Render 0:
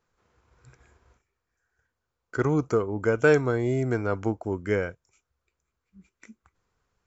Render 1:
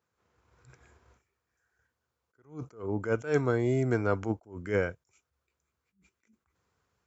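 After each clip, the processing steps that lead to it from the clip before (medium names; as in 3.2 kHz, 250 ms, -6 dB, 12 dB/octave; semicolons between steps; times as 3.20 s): high-pass 62 Hz 24 dB/octave; level rider gain up to 5.5 dB; attacks held to a fixed rise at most 170 dB/s; trim -5.5 dB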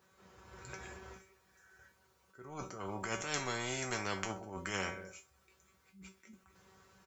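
feedback comb 190 Hz, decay 0.22 s, harmonics all, mix 90%; feedback delay 65 ms, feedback 55%, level -24 dB; spectrum-flattening compressor 4:1; trim +8 dB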